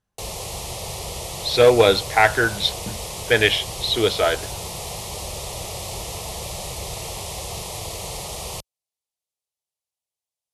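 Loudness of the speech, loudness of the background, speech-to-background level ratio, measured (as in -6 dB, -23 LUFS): -18.5 LUFS, -30.5 LUFS, 12.0 dB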